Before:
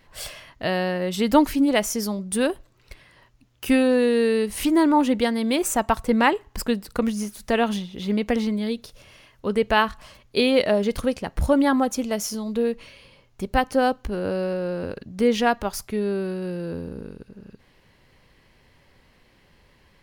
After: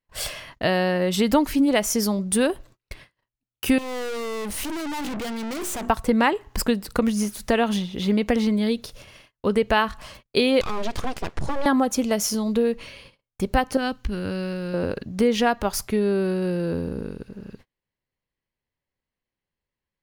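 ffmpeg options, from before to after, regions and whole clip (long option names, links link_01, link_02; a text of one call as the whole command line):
ffmpeg -i in.wav -filter_complex "[0:a]asettb=1/sr,asplit=3[link_01][link_02][link_03];[link_01]atrim=end=3.784[link_04];[link_02]atrim=start=3.78:end=5.9,asetpts=PTS-STARTPTS,afade=type=in:duration=0.004:curve=qsin,afade=type=out:start_time=2.116:duration=0.004:curve=qsin,bandreject=frequency=60:width_type=h:width=6,bandreject=frequency=120:width_type=h:width=6,bandreject=frequency=180:width_type=h:width=6,bandreject=frequency=240:width_type=h:width=6,bandreject=frequency=300:width_type=h:width=6,bandreject=frequency=360:width_type=h:width=6,acontrast=39,aeval=exprs='(tanh(50.1*val(0)+0.5)-tanh(0.5))/50.1':channel_layout=same[link_05];[link_03]atrim=start=5.896[link_06];[link_04][link_05]acrossfade=duration=0.004:curve1=hsin:curve2=qsin[link_07];[link_07][link_06]acrossfade=duration=0.004:curve1=qsin:curve2=hsin,asettb=1/sr,asplit=3[link_08][link_09][link_10];[link_08]atrim=end=10.614[link_11];[link_09]atrim=start=10.61:end=11.66,asetpts=PTS-STARTPTS,afade=type=in:duration=0.004:curve=qsin,afade=type=out:start_time=1.046:duration=0.004:curve=qsin,lowpass=frequency=8100:width=0.5412,lowpass=frequency=8100:width=1.3066,acompressor=threshold=-24dB:ratio=6:attack=3.2:release=140:knee=1:detection=peak,aeval=exprs='abs(val(0))':channel_layout=same[link_12];[link_10]atrim=start=11.656[link_13];[link_11][link_12]acrossfade=duration=0.004:curve1=hsin:curve2=qsin[link_14];[link_14][link_13]acrossfade=duration=0.004:curve1=qsin:curve2=hsin,asettb=1/sr,asplit=3[link_15][link_16][link_17];[link_15]atrim=end=13.774[link_18];[link_16]atrim=start=13.77:end=14.74,asetpts=PTS-STARTPTS,afade=type=in:duration=0.004:curve=qsin,afade=type=out:start_time=0.966:duration=0.004:curve=qsin,acrossover=split=5800[link_19][link_20];[link_20]acompressor=threshold=-56dB:ratio=4:attack=1:release=60[link_21];[link_19][link_21]amix=inputs=2:normalize=0,equalizer=frequency=610:width_type=o:width=2:gain=-13.5[link_22];[link_17]atrim=start=14.736[link_23];[link_18][link_22]acrossfade=duration=0.004:curve1=hsin:curve2=qsin[link_24];[link_24][link_23]acrossfade=duration=0.004:curve1=qsin:curve2=hsin,agate=range=-36dB:threshold=-49dB:ratio=16:detection=peak,acompressor=threshold=-23dB:ratio=2.5,volume=5dB" out.wav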